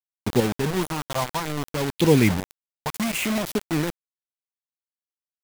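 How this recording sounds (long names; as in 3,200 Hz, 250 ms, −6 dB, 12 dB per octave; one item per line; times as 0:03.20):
phaser sweep stages 4, 0.64 Hz, lowest notch 320–1,400 Hz
chopped level 0.5 Hz, depth 60%, duty 20%
a quantiser's noise floor 6 bits, dither none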